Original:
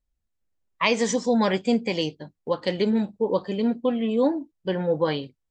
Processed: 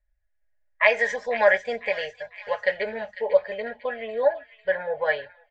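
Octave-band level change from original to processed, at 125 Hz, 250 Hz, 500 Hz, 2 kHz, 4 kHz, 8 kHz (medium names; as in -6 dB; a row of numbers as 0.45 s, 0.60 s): under -20 dB, -21.5 dB, +1.0 dB, +8.5 dB, -6.5 dB, under -10 dB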